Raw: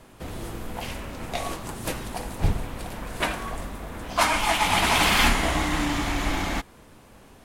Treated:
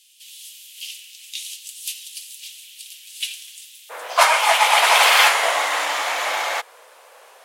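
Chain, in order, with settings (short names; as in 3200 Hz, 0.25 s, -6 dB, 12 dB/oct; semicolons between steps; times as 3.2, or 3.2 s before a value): elliptic high-pass 2900 Hz, stop band 70 dB, from 3.89 s 500 Hz; gain +7.5 dB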